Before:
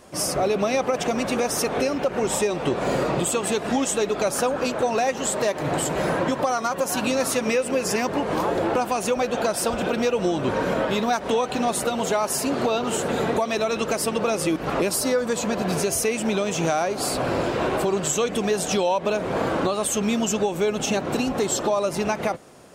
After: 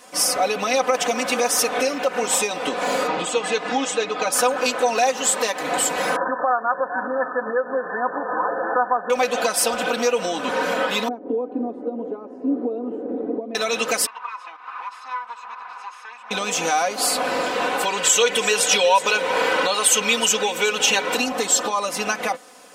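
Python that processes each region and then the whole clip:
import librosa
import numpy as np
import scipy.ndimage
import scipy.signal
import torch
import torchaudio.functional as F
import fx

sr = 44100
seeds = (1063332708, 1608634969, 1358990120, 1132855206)

y = fx.chain(x, sr, fx.air_absorb(metres=110.0),
    fx.comb(ms=6.4, depth=0.36), at=(3.07, 4.32))
y = fx.chain(y, sr, fx.brickwall_lowpass(high_hz=1800.0),
    fx.tilt_eq(slope=2.5), at=(6.16, 9.1))
y = fx.chain(y, sr, fx.lowpass_res(hz=290.0, q=2.5),
    fx.low_shelf_res(hz=220.0, db=-13.5, q=1.5), at=(11.08, 13.55))
y = fx.chain(y, sr, fx.lower_of_two(delay_ms=0.77),
    fx.ladder_bandpass(hz=1200.0, resonance_pct=55),
    fx.peak_eq(hz=1300.0, db=-3.0, octaves=0.23), at=(14.06, 16.31))
y = fx.chain(y, sr, fx.peak_eq(hz=2600.0, db=6.0, octaves=1.6),
    fx.comb(ms=2.1, depth=0.42),
    fx.echo_single(ms=371, db=-14.0), at=(17.83, 21.16))
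y = fx.highpass(y, sr, hz=1000.0, slope=6)
y = y + 0.86 * np.pad(y, (int(4.0 * sr / 1000.0), 0))[:len(y)]
y = y * librosa.db_to_amplitude(4.5)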